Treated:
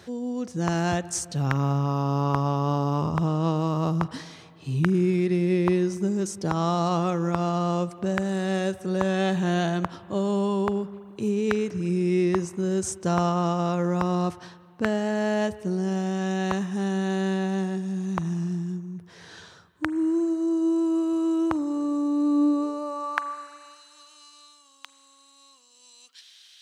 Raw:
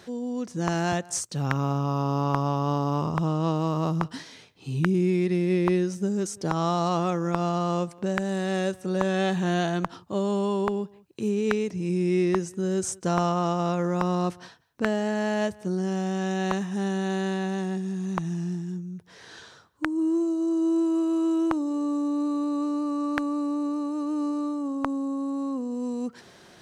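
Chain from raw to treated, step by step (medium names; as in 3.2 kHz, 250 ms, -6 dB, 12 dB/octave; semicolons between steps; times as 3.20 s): high-pass sweep 75 Hz -> 3.3 kHz, 21.71–23.82 s; spring tank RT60 2.5 s, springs 36/40/47 ms, chirp 50 ms, DRR 17 dB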